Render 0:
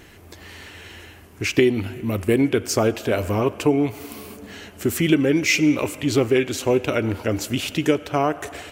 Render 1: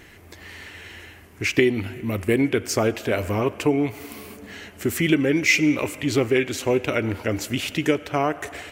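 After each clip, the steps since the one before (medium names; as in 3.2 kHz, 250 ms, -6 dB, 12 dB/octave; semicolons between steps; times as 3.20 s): peaking EQ 2 kHz +5.5 dB 0.56 oct; trim -2 dB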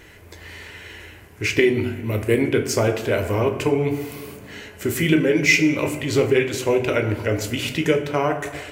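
reverberation RT60 0.95 s, pre-delay 12 ms, DRR 5 dB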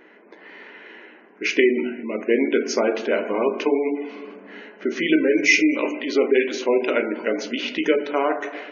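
spectral gate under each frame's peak -30 dB strong; level-controlled noise filter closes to 1.6 kHz, open at -15 dBFS; brick-wall FIR band-pass 190–6800 Hz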